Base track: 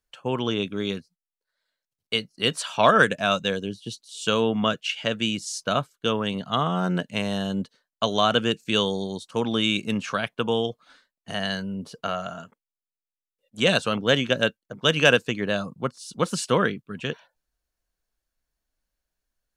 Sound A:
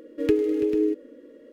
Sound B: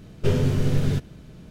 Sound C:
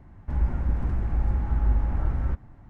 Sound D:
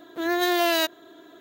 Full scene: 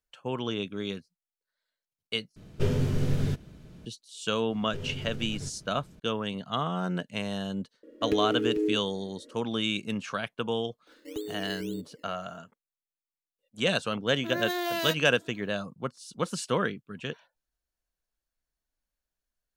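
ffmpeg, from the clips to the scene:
-filter_complex "[2:a]asplit=2[a][b];[1:a]asplit=2[c][d];[0:a]volume=-6dB[e];[b]acompressor=threshold=-24dB:ratio=6:attack=3.2:release=140:knee=1:detection=peak[f];[d]acrusher=samples=15:mix=1:aa=0.000001:lfo=1:lforange=9:lforate=1.9[g];[e]asplit=2[h][i];[h]atrim=end=2.364[j];[a]atrim=end=1.5,asetpts=PTS-STARTPTS,volume=-5dB[k];[i]atrim=start=3.856[l];[f]atrim=end=1.5,asetpts=PTS-STARTPTS,volume=-9dB,afade=t=in:d=0.004:c=hsin,afade=t=out:st=1.496:d=0.004:c=hsin,adelay=4500[m];[c]atrim=end=1.52,asetpts=PTS-STARTPTS,volume=-5dB,afade=t=in:d=0.004:c=hsin,afade=t=out:st=1.516:d=0.004:c=hsin,adelay=7830[n];[g]atrim=end=1.52,asetpts=PTS-STARTPTS,volume=-15dB,afade=t=in:d=0.004:c=hsin,afade=t=out:st=1.516:d=0.004:c=hsin,adelay=10870[o];[4:a]atrim=end=1.4,asetpts=PTS-STARTPTS,volume=-8.5dB,afade=t=in:d=0.004:c=hsin,afade=t=out:st=1.396:d=0.004:c=hsin,adelay=14070[p];[j][k]acrossfade=d=0.004:c1=hsin:c2=hsin[q];[q][l]acrossfade=d=0.004:c1=hsin:c2=hsin[r];[r][m][n][o][p]amix=inputs=5:normalize=0"

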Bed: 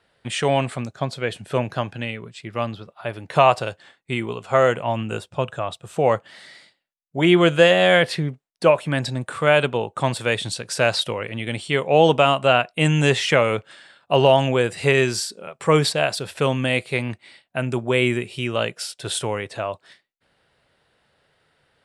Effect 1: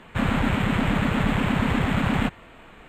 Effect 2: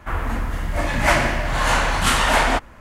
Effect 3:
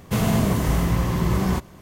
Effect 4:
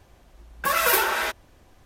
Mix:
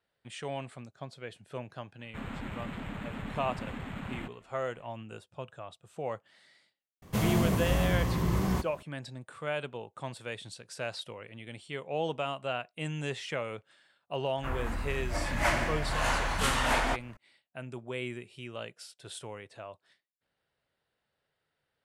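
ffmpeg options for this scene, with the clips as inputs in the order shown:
-filter_complex "[0:a]volume=-17.5dB[a];[1:a]atrim=end=2.88,asetpts=PTS-STARTPTS,volume=-17dB,afade=t=in:d=0.004:c=hsin,afade=t=out:st=2.876:d=0.004:c=hsin,adelay=1990[b];[3:a]atrim=end=1.81,asetpts=PTS-STARTPTS,volume=-7dB,afade=t=in:d=0.004:c=hsin,afade=t=out:st=1.806:d=0.004:c=hsin,adelay=7020[c];[2:a]atrim=end=2.8,asetpts=PTS-STARTPTS,volume=-10.5dB,afade=t=in:d=0.004:c=hsin,afade=t=out:st=2.796:d=0.004:c=hsin,adelay=14370[d];[a][b][c][d]amix=inputs=4:normalize=0"

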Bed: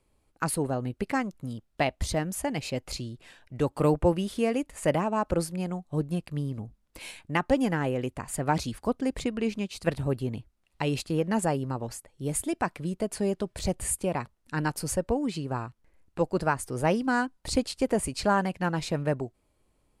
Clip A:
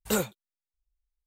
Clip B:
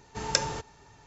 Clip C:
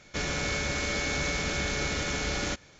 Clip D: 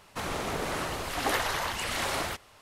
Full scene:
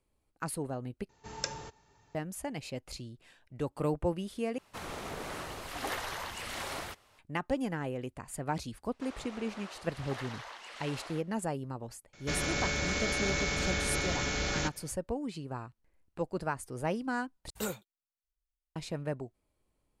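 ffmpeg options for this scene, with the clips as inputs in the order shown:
-filter_complex "[4:a]asplit=2[a][b];[0:a]volume=-8dB[c];[b]highpass=470,lowpass=6.3k[d];[c]asplit=4[e][f][g][h];[e]atrim=end=1.094[i];[2:a]atrim=end=1.06,asetpts=PTS-STARTPTS,volume=-10dB[j];[f]atrim=start=2.146:end=4.584[k];[a]atrim=end=2.61,asetpts=PTS-STARTPTS,volume=-8dB[l];[g]atrim=start=7.186:end=17.504[m];[1:a]atrim=end=1.26,asetpts=PTS-STARTPTS,volume=-9dB[n];[h]atrim=start=18.756[o];[d]atrim=end=2.61,asetpts=PTS-STARTPTS,volume=-14dB,afade=t=in:d=0.004:c=hsin,afade=t=out:st=2.606:d=0.004:c=hsin,adelay=8850[p];[3:a]atrim=end=2.79,asetpts=PTS-STARTPTS,volume=-2dB,afade=t=in:d=0.004:c=hsin,afade=t=out:st=2.786:d=0.004:c=hsin,adelay=12130[q];[i][j]acrossfade=d=0.004:c1=hsin:c2=hsin[r];[r][k]acrossfade=d=0.004:c1=hsin:c2=hsin[s];[s][l]acrossfade=d=0.004:c1=hsin:c2=hsin[t];[t][m]acrossfade=d=0.004:c1=hsin:c2=hsin[u];[u][n]acrossfade=d=0.004:c1=hsin:c2=hsin[v];[v][o]acrossfade=d=0.004:c1=hsin:c2=hsin[w];[w][p][q]amix=inputs=3:normalize=0"

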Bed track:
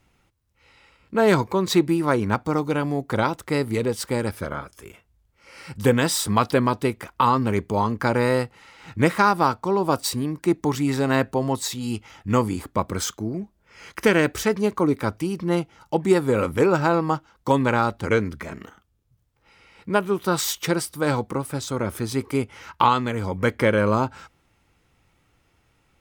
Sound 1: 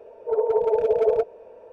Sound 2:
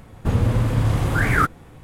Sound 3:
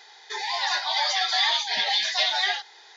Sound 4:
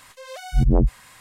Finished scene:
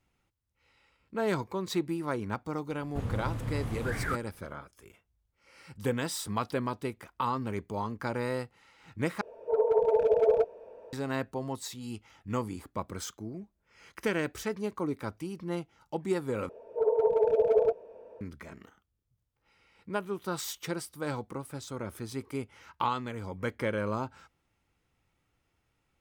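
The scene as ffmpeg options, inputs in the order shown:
-filter_complex "[1:a]asplit=2[a][b];[0:a]volume=-12dB[c];[b]equalizer=f=210:w=0.42:g=4[d];[c]asplit=3[e][f][g];[e]atrim=end=9.214[h];[a]atrim=end=1.72,asetpts=PTS-STARTPTS,volume=-3.5dB[i];[f]atrim=start=10.926:end=16.494[j];[d]atrim=end=1.72,asetpts=PTS-STARTPTS,volume=-6.5dB[k];[g]atrim=start=18.206[l];[2:a]atrim=end=1.83,asetpts=PTS-STARTPTS,volume=-15dB,afade=t=in:d=0.004:c=hsin,afade=t=out:st=1.826:d=0.004:c=hsin,adelay=2700[m];[h][i]acrossfade=d=0.004:c1=hsin:c2=hsin[n];[n][j]acrossfade=d=0.004:c1=hsin:c2=hsin[o];[o][k]acrossfade=d=0.004:c1=hsin:c2=hsin[p];[p][l]acrossfade=d=0.004:c1=hsin:c2=hsin[q];[q][m]amix=inputs=2:normalize=0"

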